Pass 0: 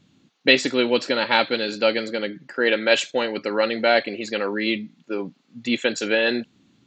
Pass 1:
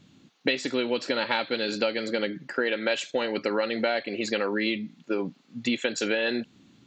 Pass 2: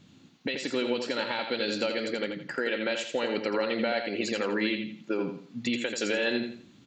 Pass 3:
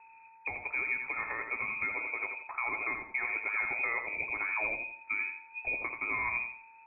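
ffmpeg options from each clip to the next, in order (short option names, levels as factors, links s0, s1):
-af "acompressor=threshold=0.0562:ratio=10,volume=1.33"
-filter_complex "[0:a]alimiter=limit=0.126:level=0:latency=1:release=262,asplit=2[s0][s1];[s1]aecho=0:1:84|168|252|336:0.473|0.147|0.0455|0.0141[s2];[s0][s2]amix=inputs=2:normalize=0"
-af "aeval=exprs='val(0)+0.00316*sin(2*PI*1800*n/s)':c=same,lowpass=f=2300:t=q:w=0.5098,lowpass=f=2300:t=q:w=0.6013,lowpass=f=2300:t=q:w=0.9,lowpass=f=2300:t=q:w=2.563,afreqshift=-2700,volume=0.596"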